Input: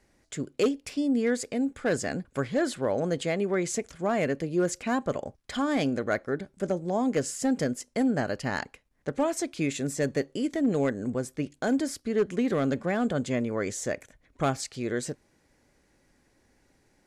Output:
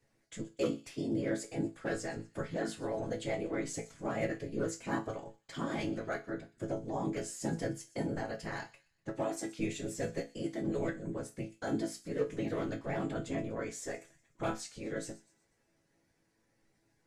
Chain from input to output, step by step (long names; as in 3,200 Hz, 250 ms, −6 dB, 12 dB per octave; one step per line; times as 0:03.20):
random phases in short frames
resonators tuned to a chord A2 major, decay 0.24 s
delay with a high-pass on its return 122 ms, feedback 44%, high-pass 2,800 Hz, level −17.5 dB
level +3.5 dB